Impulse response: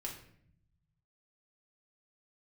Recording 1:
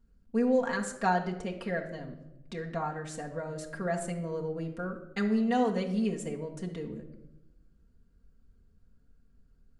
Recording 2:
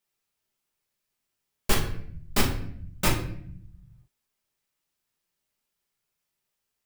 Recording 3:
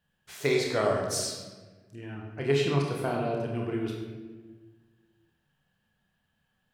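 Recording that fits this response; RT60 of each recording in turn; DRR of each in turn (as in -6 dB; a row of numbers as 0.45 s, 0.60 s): 2; 0.95 s, 0.65 s, 1.4 s; 0.0 dB, -1.5 dB, -1.0 dB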